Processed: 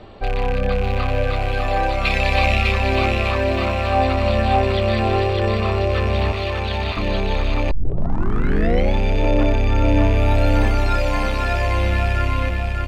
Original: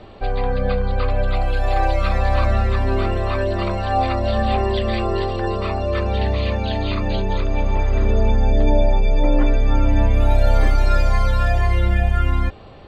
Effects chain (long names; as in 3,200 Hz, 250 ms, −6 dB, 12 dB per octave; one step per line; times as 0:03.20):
loose part that buzzes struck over −23 dBFS, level −20 dBFS
0:02.05–0:02.72: high shelf with overshoot 1,900 Hz +7 dB, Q 3
0:06.32–0:06.97: Butterworth high-pass 700 Hz 96 dB per octave
repeating echo 599 ms, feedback 46%, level −4 dB
0:07.71: tape start 1.25 s